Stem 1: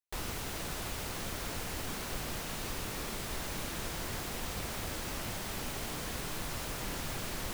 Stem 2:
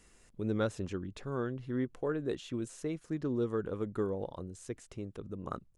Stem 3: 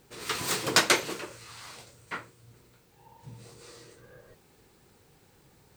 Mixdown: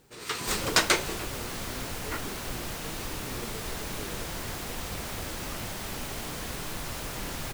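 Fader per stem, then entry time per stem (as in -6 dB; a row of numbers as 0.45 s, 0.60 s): +2.5 dB, -11.5 dB, -1.0 dB; 0.35 s, 0.00 s, 0.00 s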